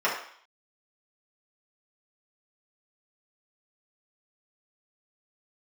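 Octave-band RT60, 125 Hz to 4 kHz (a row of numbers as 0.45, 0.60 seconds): 0.25, 0.50, 0.50, 0.60, 0.60, 0.65 seconds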